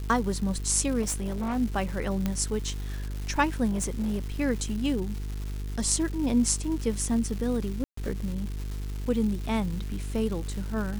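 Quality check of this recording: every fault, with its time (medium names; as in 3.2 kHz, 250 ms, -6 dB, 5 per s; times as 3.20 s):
buzz 50 Hz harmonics 9 -33 dBFS
crackle 470 per s -35 dBFS
1.01–1.57 s: clipped -26 dBFS
2.26 s: pop -14 dBFS
3.70–4.32 s: clipped -23.5 dBFS
7.84–7.97 s: dropout 134 ms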